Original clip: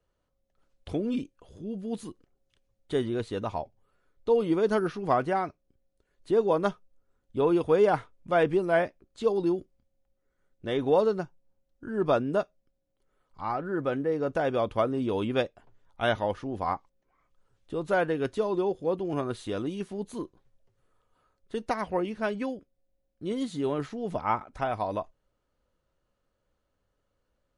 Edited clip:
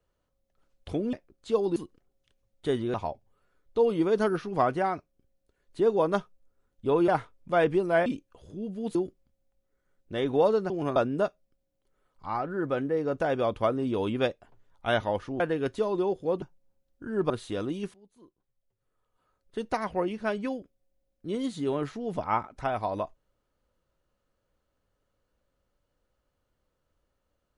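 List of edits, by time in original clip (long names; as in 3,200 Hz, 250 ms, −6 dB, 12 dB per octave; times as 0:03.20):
0:01.13–0:02.02: swap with 0:08.85–0:09.48
0:03.20–0:03.45: remove
0:07.59–0:07.87: remove
0:11.23–0:12.11: swap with 0:19.01–0:19.27
0:16.55–0:17.99: remove
0:19.91–0:21.60: fade in quadratic, from −23.5 dB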